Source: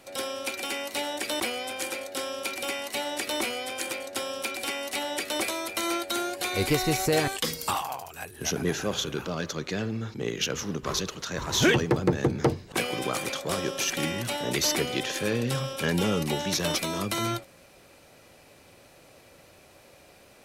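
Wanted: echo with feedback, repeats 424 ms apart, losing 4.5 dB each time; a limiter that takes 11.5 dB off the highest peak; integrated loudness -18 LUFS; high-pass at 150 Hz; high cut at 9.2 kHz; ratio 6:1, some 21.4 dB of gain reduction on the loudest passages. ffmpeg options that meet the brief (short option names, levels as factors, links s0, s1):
-af "highpass=150,lowpass=9200,acompressor=threshold=0.00794:ratio=6,alimiter=level_in=4.47:limit=0.0631:level=0:latency=1,volume=0.224,aecho=1:1:424|848|1272|1696|2120|2544|2968|3392|3816:0.596|0.357|0.214|0.129|0.0772|0.0463|0.0278|0.0167|0.01,volume=22.4"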